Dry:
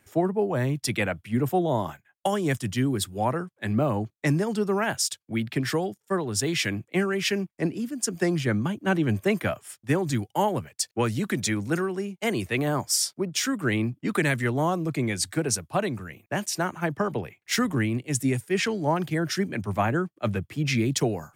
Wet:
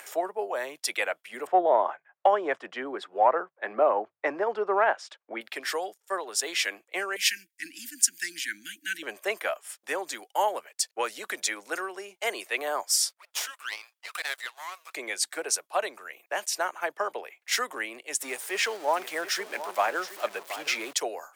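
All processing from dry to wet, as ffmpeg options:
ffmpeg -i in.wav -filter_complex "[0:a]asettb=1/sr,asplit=3[link_01][link_02][link_03];[link_01]atrim=end=1.474[link_04];[link_02]atrim=start=1.47:end=5.41,asetpts=PTS-STARTPTS,afade=type=in:duration=0.004:curve=qsin,afade=type=out:start_time=3.936:duration=0.004:curve=qsin,lowpass=1400,bandreject=frequency=50:width_type=h:width=6,bandreject=frequency=100:width_type=h:width=6,bandreject=frequency=150:width_type=h:width=6,acontrast=81[link_05];[link_03]atrim=start=5.406[link_06];[link_04][link_05]acrossfade=duration=0.004:curve1=hsin:curve2=qsin[link_07];[link_07][link_06]acrossfade=duration=0.004:curve1=qsin:curve2=hsin,asettb=1/sr,asplit=3[link_08][link_09][link_10];[link_08]atrim=end=7.164[link_11];[link_09]atrim=start=7.16:end=9.03,asetpts=PTS-STARTPTS,afade=type=in:duration=0.004:curve=qsin,afade=type=out:start_time=1.866:duration=0.004:curve=qsin,asuperstop=centerf=700:order=20:qfactor=0.58,aemphasis=mode=production:type=cd[link_12];[link_10]atrim=start=9.026[link_13];[link_11][link_12]acrossfade=duration=0.004:curve1=hsin:curve2=qsin[link_14];[link_14][link_13]acrossfade=duration=0.004:curve1=qsin:curve2=hsin,asettb=1/sr,asplit=3[link_15][link_16][link_17];[link_15]atrim=end=13.094[link_18];[link_16]atrim=start=13.09:end=14.95,asetpts=PTS-STARTPTS,afade=type=in:duration=0.004:curve=qsin,afade=type=out:start_time=1.856:duration=0.004:curve=qsin,highpass=frequency=1100:width=0.5412,highpass=frequency=1100:width=1.3066,aeval=exprs='max(val(0),0)':channel_layout=same[link_19];[link_17]atrim=start=14.946[link_20];[link_18][link_19]acrossfade=duration=0.004:curve1=hsin:curve2=qsin[link_21];[link_21][link_20]acrossfade=duration=0.004:curve1=qsin:curve2=hsin,asettb=1/sr,asplit=3[link_22][link_23][link_24];[link_22]atrim=end=18.214[link_25];[link_23]atrim=start=18.21:end=20.93,asetpts=PTS-STARTPTS,afade=type=in:duration=0.004:curve=qsin,afade=type=out:start_time=2.716:duration=0.004:curve=qsin,aeval=exprs='val(0)+0.5*0.0188*sgn(val(0))':channel_layout=same,aecho=1:1:722:0.224,atrim=end_sample=119952[link_26];[link_24]atrim=start=20.926[link_27];[link_25][link_26]acrossfade=duration=0.004:curve1=hsin:curve2=qsin[link_28];[link_28][link_27]acrossfade=duration=0.004:curve1=qsin:curve2=hsin,highpass=frequency=510:width=0.5412,highpass=frequency=510:width=1.3066,acompressor=mode=upward:threshold=-34dB:ratio=2.5" out.wav

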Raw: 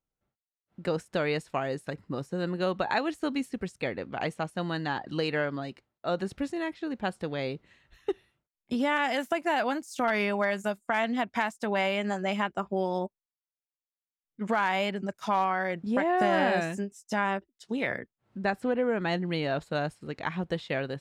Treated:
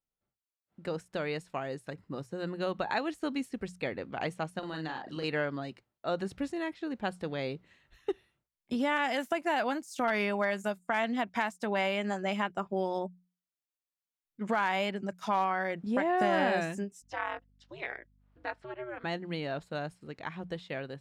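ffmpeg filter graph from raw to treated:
ffmpeg -i in.wav -filter_complex "[0:a]asettb=1/sr,asplit=3[link_01][link_02][link_03];[link_01]atrim=end=4.594[link_04];[link_02]atrim=start=4.59:end=5.24,asetpts=PTS-STARTPTS,afade=type=in:duration=0.004:curve=qsin,afade=type=out:start_time=0.646:duration=0.004:curve=qsin,lowshelf=frequency=120:gain=-11,acompressor=threshold=-33dB:ratio=3:attack=3.2:release=140:knee=1:detection=peak,asplit=2[link_05][link_06];[link_06]adelay=38,volume=-4.5dB[link_07];[link_05][link_07]amix=inputs=2:normalize=0,atrim=end_sample=28665[link_08];[link_03]atrim=start=5.236[link_09];[link_04][link_08]acrossfade=duration=0.004:curve1=hsin:curve2=qsin[link_10];[link_10][link_09]acrossfade=duration=0.004:curve1=qsin:curve2=hsin,asettb=1/sr,asplit=3[link_11][link_12][link_13];[link_11]atrim=end=17.024[link_14];[link_12]atrim=start=17.02:end=19.04,asetpts=PTS-STARTPTS,afade=type=in:duration=0.004:curve=qsin,afade=type=out:start_time=2.016:duration=0.004:curve=qsin,highpass=610,lowpass=4200,aeval=exprs='val(0)*sin(2*PI*120*n/s)':channel_layout=same,aeval=exprs='val(0)+0.000794*(sin(2*PI*50*n/s)+sin(2*PI*2*50*n/s)/2+sin(2*PI*3*50*n/s)/3+sin(2*PI*4*50*n/s)/4+sin(2*PI*5*50*n/s)/5)':channel_layout=same[link_15];[link_13]atrim=start=19.036[link_16];[link_14][link_15]acrossfade=duration=0.004:curve1=hsin:curve2=qsin[link_17];[link_17][link_16]acrossfade=duration=0.004:curve1=qsin:curve2=hsin,bandreject=frequency=60:width_type=h:width=6,bandreject=frequency=120:width_type=h:width=6,bandreject=frequency=180:width_type=h:width=6,dynaudnorm=framelen=320:gausssize=17:maxgain=3.5dB,volume=-6dB" out.wav

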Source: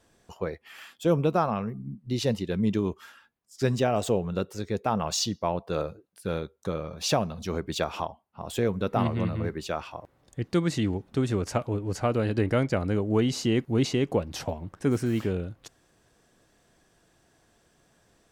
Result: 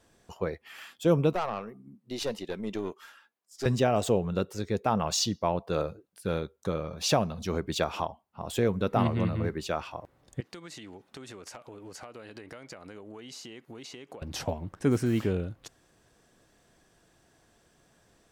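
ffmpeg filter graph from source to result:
ffmpeg -i in.wav -filter_complex "[0:a]asettb=1/sr,asplit=3[link_01][link_02][link_03];[link_01]atrim=end=1.334[link_04];[link_02]atrim=start=1.33:end=3.66,asetpts=PTS-STARTPTS,afade=type=in:duration=0.004:curve=qsin,afade=type=out:start_time=2.326:duration=0.004:curve=qsin,highpass=350,aeval=exprs='(tanh(15.8*val(0)+0.45)-tanh(0.45))/15.8':channel_layout=same[link_05];[link_03]atrim=start=3.656[link_06];[link_04][link_05]acrossfade=duration=0.004:curve1=hsin:curve2=qsin[link_07];[link_07][link_06]acrossfade=duration=0.004:curve1=qsin:curve2=hsin,asettb=1/sr,asplit=3[link_08][link_09][link_10];[link_08]atrim=end=10.404[link_11];[link_09]atrim=start=10.4:end=14.22,asetpts=PTS-STARTPTS,afade=type=in:duration=0.004:curve=qsin,afade=type=out:start_time=3.816:duration=0.004:curve=qsin,highpass=frequency=790:poles=1,acompressor=threshold=-40dB:ratio=12:attack=3.2:release=140:knee=1:detection=peak,asoftclip=type=hard:threshold=-29.5dB[link_12];[link_10]atrim=start=14.216[link_13];[link_11][link_12]acrossfade=duration=0.004:curve1=hsin:curve2=qsin[link_14];[link_14][link_13]acrossfade=duration=0.004:curve1=qsin:curve2=hsin" out.wav

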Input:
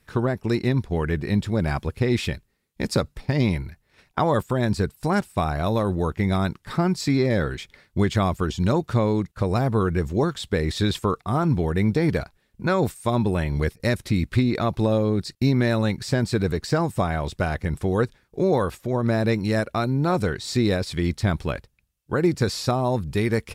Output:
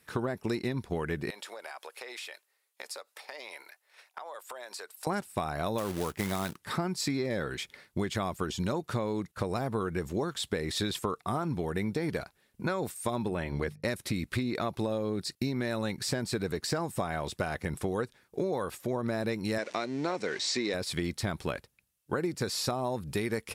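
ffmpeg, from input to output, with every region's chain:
ffmpeg -i in.wav -filter_complex "[0:a]asettb=1/sr,asplit=3[link_01][link_02][link_03];[link_01]atrim=end=1.304[link_04];[link_02]atrim=start=1.3:end=5.07,asetpts=PTS-STARTPTS,afade=type=in:duration=0.004:curve=qsin,afade=type=out:start_time=3.766:duration=0.004:curve=qsin,highpass=frequency=550:width=0.5412,highpass=frequency=550:width=1.3066,acompressor=threshold=-38dB:ratio=10:attack=3.2:release=140:knee=1:detection=peak[link_05];[link_03]atrim=start=5.066[link_06];[link_04][link_05]acrossfade=duration=0.004:curve1=hsin:curve2=qsin[link_07];[link_07][link_06]acrossfade=duration=0.004:curve1=qsin:curve2=hsin,asettb=1/sr,asplit=3[link_08][link_09][link_10];[link_08]atrim=end=5.784[link_11];[link_09]atrim=start=5.78:end=6.56,asetpts=PTS-STARTPTS,afade=type=in:duration=0.004:curve=qsin,afade=type=out:start_time=0.776:duration=0.004:curve=qsin,highpass=42,acrusher=bits=3:mode=log:mix=0:aa=0.000001[link_12];[link_10]atrim=start=6.556[link_13];[link_11][link_12]acrossfade=duration=0.004:curve1=hsin:curve2=qsin[link_14];[link_14][link_13]acrossfade=duration=0.004:curve1=qsin:curve2=hsin,asettb=1/sr,asplit=3[link_15][link_16][link_17];[link_15]atrim=end=13.284[link_18];[link_16]atrim=start=13.28:end=13.88,asetpts=PTS-STARTPTS,afade=type=in:duration=0.004:curve=qsin,afade=type=out:start_time=0.596:duration=0.004:curve=qsin,highshelf=frequency=5800:gain=-12,agate=range=-13dB:threshold=-46dB:ratio=16:release=100:detection=peak,bandreject=frequency=50:width_type=h:width=6,bandreject=frequency=100:width_type=h:width=6,bandreject=frequency=150:width_type=h:width=6,bandreject=frequency=200:width_type=h:width=6[link_19];[link_17]atrim=start=13.876[link_20];[link_18][link_19]acrossfade=duration=0.004:curve1=hsin:curve2=qsin[link_21];[link_21][link_20]acrossfade=duration=0.004:curve1=qsin:curve2=hsin,asettb=1/sr,asplit=3[link_22][link_23][link_24];[link_22]atrim=end=19.584[link_25];[link_23]atrim=start=19.58:end=20.74,asetpts=PTS-STARTPTS,afade=type=in:duration=0.004:curve=qsin,afade=type=out:start_time=1.156:duration=0.004:curve=qsin,aeval=exprs='val(0)+0.5*0.0178*sgn(val(0))':channel_layout=same,highpass=280,equalizer=frequency=770:width_type=q:width=4:gain=-3,equalizer=frequency=1300:width_type=q:width=4:gain=-5,equalizer=frequency=2100:width_type=q:width=4:gain=6,equalizer=frequency=5800:width_type=q:width=4:gain=3,lowpass=frequency=7100:width=0.5412,lowpass=frequency=7100:width=1.3066[link_26];[link_24]atrim=start=20.736[link_27];[link_25][link_26]acrossfade=duration=0.004:curve1=hsin:curve2=qsin[link_28];[link_28][link_27]acrossfade=duration=0.004:curve1=qsin:curve2=hsin,highpass=frequency=240:poles=1,equalizer=frequency=11000:width_type=o:width=0.82:gain=5.5,acompressor=threshold=-28dB:ratio=6" out.wav

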